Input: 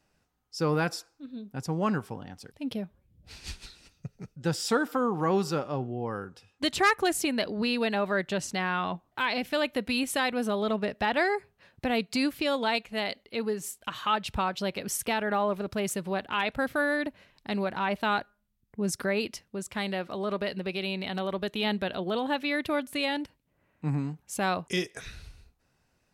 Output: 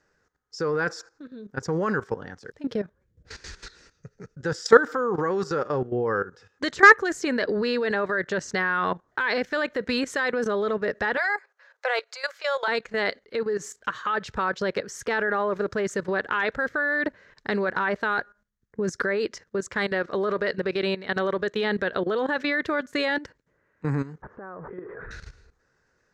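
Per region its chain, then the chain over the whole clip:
11.17–12.68 s: steep high-pass 540 Hz 48 dB/octave + band-stop 1.8 kHz, Q 13
24.22–25.11 s: jump at every zero crossing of -39.5 dBFS + low-pass 1.3 kHz 24 dB/octave + compression 12:1, threshold -33 dBFS
whole clip: FFT filter 270 Hz 0 dB, 460 Hz +11 dB, 710 Hz -1 dB, 1.7 kHz +13 dB, 2.6 kHz -4 dB, 6.8 kHz +5 dB, 10 kHz -16 dB; level held to a coarse grid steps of 15 dB; trim +5.5 dB

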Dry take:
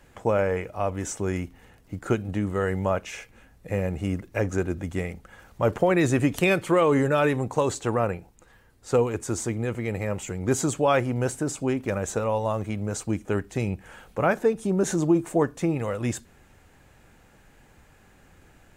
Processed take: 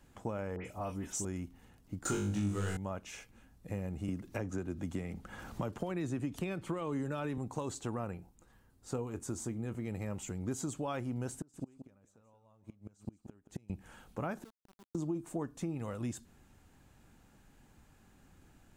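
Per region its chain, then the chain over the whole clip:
0.56–1.25 s: treble shelf 4.1 kHz +7.5 dB + doubling 26 ms -13 dB + phase dispersion highs, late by 93 ms, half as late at 2.7 kHz
2.05–2.77 s: peaking EQ 6.1 kHz +15 dB 1.8 oct + waveshaping leveller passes 2 + flutter echo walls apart 3.4 m, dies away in 0.56 s
4.08–7.38 s: treble shelf 7.6 kHz -5 dB + three bands compressed up and down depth 70%
8.17–9.87 s: peaking EQ 3.7 kHz -3 dB 2.2 oct + doubling 23 ms -13 dB
11.36–13.70 s: inverted gate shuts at -21 dBFS, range -31 dB + delay 176 ms -11.5 dB
14.43–14.95 s: Butterworth band-stop 2.1 kHz, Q 2.1 + inverted gate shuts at -28 dBFS, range -26 dB + small samples zeroed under -43 dBFS
whole clip: graphic EQ 250/500/2000 Hz +4/-6/-6 dB; compression 3:1, threshold -29 dBFS; trim -6.5 dB

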